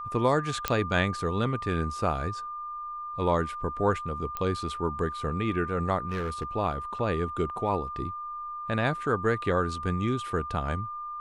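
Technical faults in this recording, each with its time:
whistle 1,200 Hz −34 dBFS
0:00.68: click −9 dBFS
0:04.37: click −18 dBFS
0:06.08–0:06.45: clipping −26.5 dBFS
0:06.99: drop-out 2.5 ms

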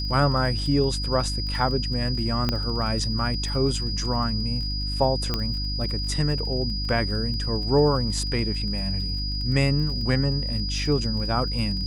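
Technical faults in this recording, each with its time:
surface crackle 30 per second −33 dBFS
mains hum 50 Hz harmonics 6 −29 dBFS
whistle 4,900 Hz −30 dBFS
0:02.49: click −10 dBFS
0:05.34: click −11 dBFS

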